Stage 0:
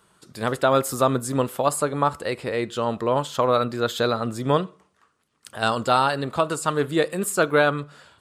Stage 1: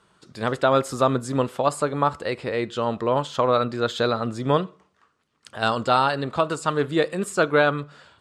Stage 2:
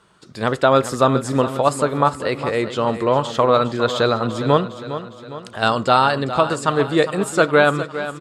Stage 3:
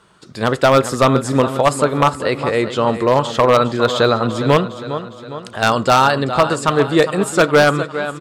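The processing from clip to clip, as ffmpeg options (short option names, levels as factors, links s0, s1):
-af "lowpass=6300"
-af "aecho=1:1:408|816|1224|1632|2040:0.251|0.131|0.0679|0.0353|0.0184,volume=1.68"
-af "aeval=exprs='0.447*(abs(mod(val(0)/0.447+3,4)-2)-1)':c=same,volume=1.5"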